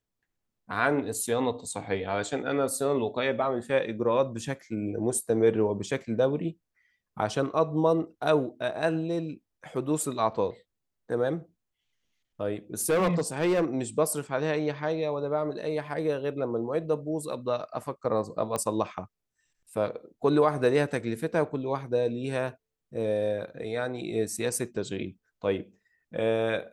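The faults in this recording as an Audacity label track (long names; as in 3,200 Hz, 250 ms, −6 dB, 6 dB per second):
12.790000	13.640000	clipping −20.5 dBFS
18.560000	18.560000	click −17 dBFS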